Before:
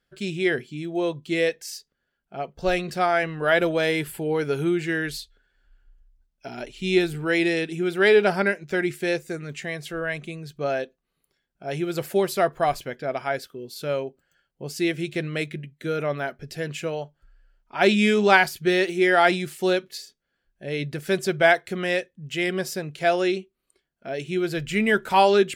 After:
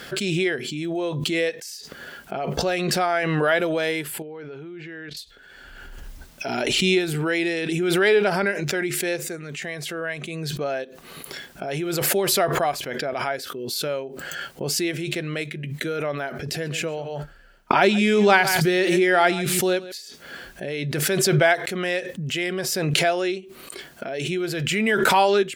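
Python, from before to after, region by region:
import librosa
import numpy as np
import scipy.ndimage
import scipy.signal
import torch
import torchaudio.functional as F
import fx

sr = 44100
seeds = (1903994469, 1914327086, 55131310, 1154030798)

y = fx.chain(x, sr, fx.level_steps(step_db=17),
    fx.air_absorb(metres=220.0), at=(4.22, 5.17))
y = fx.chain(y, sr, fx.gate_hold(open_db=-46.0, close_db=-50.0, hold_ms=71.0, range_db=-21, attack_ms=1.4, release_ms=100.0),
    fx.low_shelf(hz=280.0, db=5.0),
    fx.echo_single(ms=138, db=-17.5), at=(16.46, 19.92))
y = scipy.signal.sosfilt(scipy.signal.butter(2, 54.0, 'highpass', fs=sr, output='sos'), y)
y = fx.low_shelf(y, sr, hz=130.0, db=-11.0)
y = fx.pre_swell(y, sr, db_per_s=21.0)
y = y * librosa.db_to_amplitude(-1.0)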